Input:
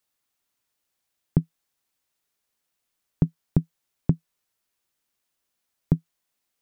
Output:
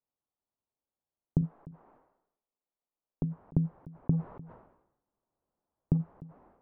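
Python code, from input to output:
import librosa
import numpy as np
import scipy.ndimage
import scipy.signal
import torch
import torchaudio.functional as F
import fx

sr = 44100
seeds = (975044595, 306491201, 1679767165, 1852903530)

y = fx.law_mismatch(x, sr, coded='mu', at=(4.11, 5.96), fade=0.02)
y = scipy.signal.sosfilt(scipy.signal.butter(4, 1000.0, 'lowpass', fs=sr, output='sos'), y)
y = fx.peak_eq(y, sr, hz=82.0, db=-13.5, octaves=1.9, at=(1.41, 3.24))
y = y + 10.0 ** (-20.5 / 20.0) * np.pad(y, (int(300 * sr / 1000.0), 0))[:len(y)]
y = fx.sustainer(y, sr, db_per_s=73.0)
y = y * 10.0 ** (-6.5 / 20.0)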